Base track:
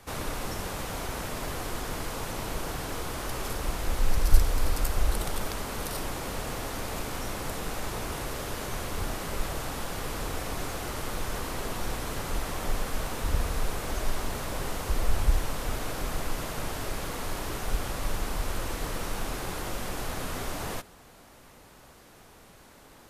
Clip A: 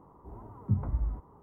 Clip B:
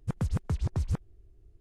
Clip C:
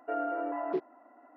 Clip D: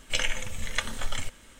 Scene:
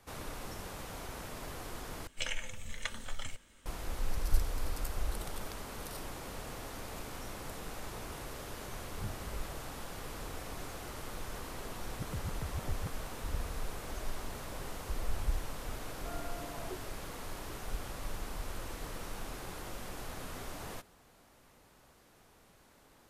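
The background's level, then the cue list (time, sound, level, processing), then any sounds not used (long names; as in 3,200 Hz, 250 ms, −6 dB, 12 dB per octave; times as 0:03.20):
base track −9.5 dB
0:02.07: overwrite with D −9.5 dB
0:08.33: mix in A −15.5 dB
0:11.92: mix in B −10.5 dB
0:15.97: mix in C −13.5 dB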